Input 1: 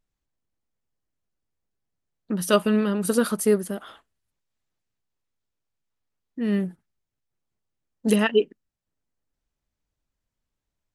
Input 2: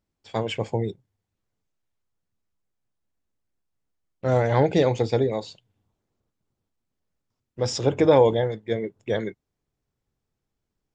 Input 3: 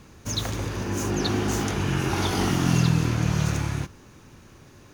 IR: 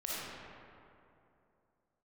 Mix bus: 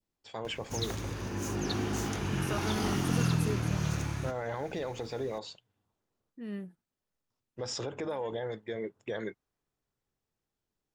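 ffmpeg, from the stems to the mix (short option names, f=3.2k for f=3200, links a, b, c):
-filter_complex "[0:a]volume=-15.5dB[a];[1:a]lowshelf=f=200:g=-7.5,bandreject=f=2.2k:w=23,alimiter=limit=-19dB:level=0:latency=1:release=192,volume=-3dB,asplit=2[b][c];[2:a]acompressor=mode=upward:threshold=-37dB:ratio=2.5,adelay=450,volume=-7.5dB[d];[c]apad=whole_len=482876[e];[a][e]sidechaincompress=threshold=-45dB:ratio=8:attack=16:release=116[f];[f][b]amix=inputs=2:normalize=0,adynamicequalizer=threshold=0.00355:dfrequency=1300:dqfactor=1.1:tfrequency=1300:tqfactor=1.1:attack=5:release=100:ratio=0.375:range=3:mode=boostabove:tftype=bell,alimiter=level_in=3dB:limit=-24dB:level=0:latency=1:release=75,volume=-3dB,volume=0dB[g];[d][g]amix=inputs=2:normalize=0"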